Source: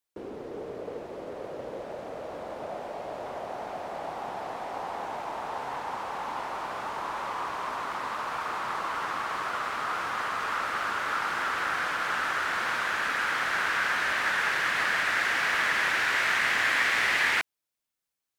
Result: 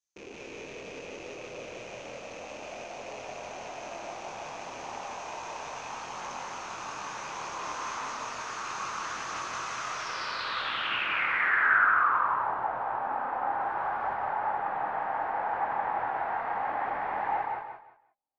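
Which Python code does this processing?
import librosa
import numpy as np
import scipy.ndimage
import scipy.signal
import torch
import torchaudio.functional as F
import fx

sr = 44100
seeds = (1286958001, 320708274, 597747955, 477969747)

p1 = fx.rattle_buzz(x, sr, strikes_db=-49.0, level_db=-30.0)
p2 = fx.high_shelf(p1, sr, hz=4200.0, db=7.5, at=(13.59, 14.14))
p3 = fx.rev_gated(p2, sr, seeds[0], gate_ms=190, shape='rising', drr_db=5.5)
p4 = fx.chorus_voices(p3, sr, voices=2, hz=0.32, base_ms=25, depth_ms=2.2, mix_pct=45)
p5 = fx.filter_sweep_lowpass(p4, sr, from_hz=6300.0, to_hz=820.0, start_s=9.89, end_s=12.52, q=7.6)
p6 = p5 + fx.echo_feedback(p5, sr, ms=177, feedback_pct=24, wet_db=-3, dry=0)
y = p6 * 10.0 ** (-4.5 / 20.0)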